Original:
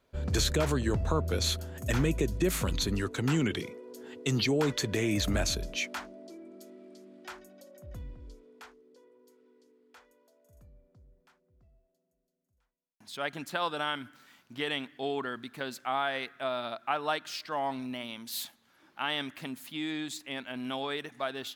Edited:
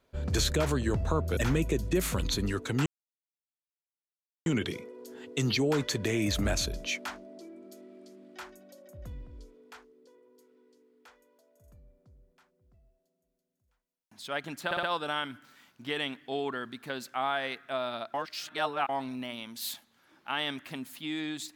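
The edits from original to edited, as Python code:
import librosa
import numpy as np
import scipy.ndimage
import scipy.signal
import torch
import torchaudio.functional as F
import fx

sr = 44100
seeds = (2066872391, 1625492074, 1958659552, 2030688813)

y = fx.edit(x, sr, fx.cut(start_s=1.37, length_s=0.49),
    fx.insert_silence(at_s=3.35, length_s=1.6),
    fx.stutter(start_s=13.54, slice_s=0.06, count=4),
    fx.reverse_span(start_s=16.85, length_s=0.75), tone=tone)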